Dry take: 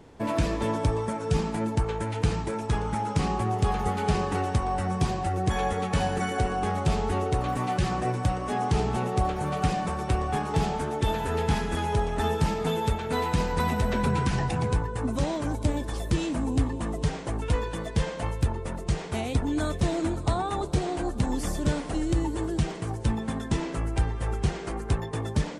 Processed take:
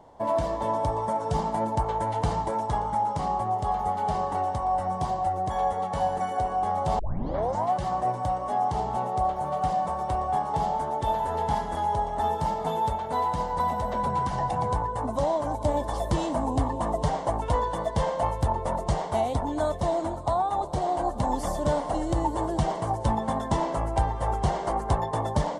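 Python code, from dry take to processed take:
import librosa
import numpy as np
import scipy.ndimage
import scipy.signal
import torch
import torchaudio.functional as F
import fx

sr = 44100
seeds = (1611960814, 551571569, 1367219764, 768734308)

y = fx.edit(x, sr, fx.tape_start(start_s=6.99, length_s=0.73), tone=tone)
y = fx.band_shelf(y, sr, hz=770.0, db=13.0, octaves=1.2)
y = fx.notch(y, sr, hz=2500.0, q=5.6)
y = fx.rider(y, sr, range_db=10, speed_s=0.5)
y = y * 10.0 ** (-6.0 / 20.0)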